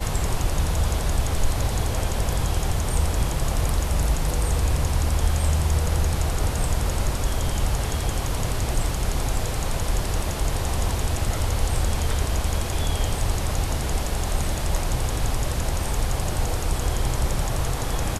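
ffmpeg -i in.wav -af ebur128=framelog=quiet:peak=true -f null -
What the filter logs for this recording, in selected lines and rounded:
Integrated loudness:
  I:         -25.5 LUFS
  Threshold: -35.5 LUFS
Loudness range:
  LRA:         2.5 LU
  Threshold: -45.4 LUFS
  LRA low:   -26.4 LUFS
  LRA high:  -23.9 LUFS
True peak:
  Peak:       -7.1 dBFS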